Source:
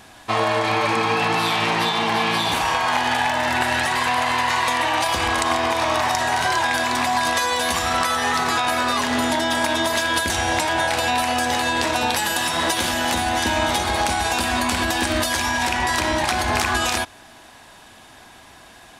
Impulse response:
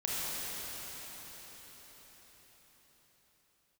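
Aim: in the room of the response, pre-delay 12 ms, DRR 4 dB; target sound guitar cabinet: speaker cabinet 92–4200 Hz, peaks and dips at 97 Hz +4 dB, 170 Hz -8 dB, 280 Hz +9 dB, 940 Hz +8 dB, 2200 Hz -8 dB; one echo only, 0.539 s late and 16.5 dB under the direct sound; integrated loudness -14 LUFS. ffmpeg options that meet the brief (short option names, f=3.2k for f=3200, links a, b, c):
-filter_complex "[0:a]aecho=1:1:539:0.15,asplit=2[a][b];[1:a]atrim=start_sample=2205,adelay=12[c];[b][c]afir=irnorm=-1:irlink=0,volume=-11.5dB[d];[a][d]amix=inputs=2:normalize=0,highpass=92,equalizer=f=97:t=q:w=4:g=4,equalizer=f=170:t=q:w=4:g=-8,equalizer=f=280:t=q:w=4:g=9,equalizer=f=940:t=q:w=4:g=8,equalizer=f=2.2k:t=q:w=4:g=-8,lowpass=f=4.2k:w=0.5412,lowpass=f=4.2k:w=1.3066,volume=2.5dB"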